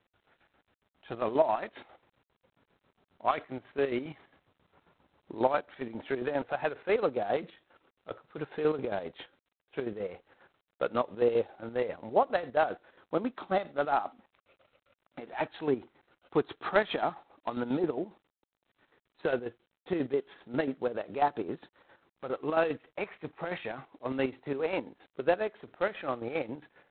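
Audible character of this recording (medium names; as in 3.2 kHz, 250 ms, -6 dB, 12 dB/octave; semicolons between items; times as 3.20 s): chopped level 7.4 Hz, depth 60%, duty 50%; G.726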